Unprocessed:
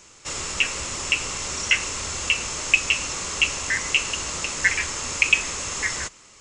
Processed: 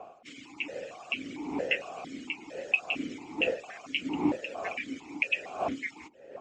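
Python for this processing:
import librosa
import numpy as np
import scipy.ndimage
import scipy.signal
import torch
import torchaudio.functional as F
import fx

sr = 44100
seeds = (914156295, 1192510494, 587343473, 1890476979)

y = fx.hpss_only(x, sr, part='percussive')
y = fx.dmg_wind(y, sr, seeds[0], corner_hz=590.0, level_db=-29.0)
y = fx.vowel_held(y, sr, hz=4.4)
y = y * 10.0 ** (2.0 / 20.0)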